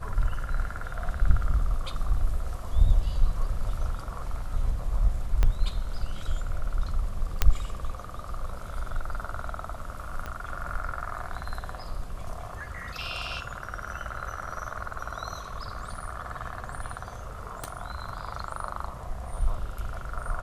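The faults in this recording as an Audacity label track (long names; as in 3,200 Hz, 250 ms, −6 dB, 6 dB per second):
5.430000	5.430000	click −11 dBFS
7.420000	7.420000	click −6 dBFS
10.260000	10.260000	click −21 dBFS
17.640000	17.640000	click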